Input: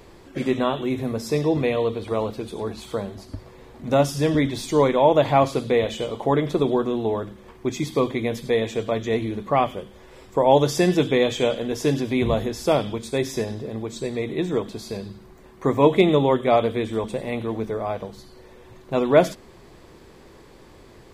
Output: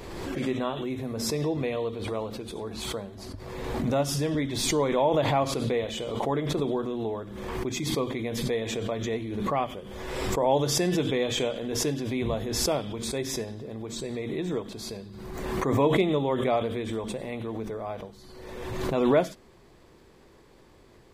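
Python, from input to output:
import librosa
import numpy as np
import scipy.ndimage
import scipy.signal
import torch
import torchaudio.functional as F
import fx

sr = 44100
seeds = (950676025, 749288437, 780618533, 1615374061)

y = fx.pre_swell(x, sr, db_per_s=33.0)
y = y * librosa.db_to_amplitude(-8.0)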